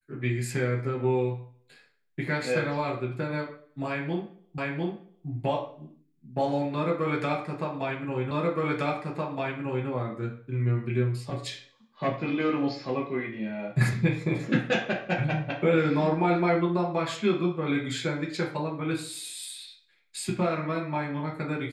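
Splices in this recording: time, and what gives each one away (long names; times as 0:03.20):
0:04.58: the same again, the last 0.7 s
0:08.31: the same again, the last 1.57 s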